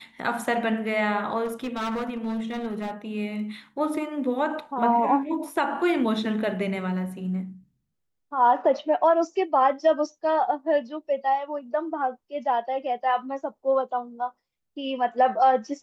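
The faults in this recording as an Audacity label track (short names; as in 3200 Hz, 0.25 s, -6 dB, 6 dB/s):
1.440000	2.910000	clipped -25.5 dBFS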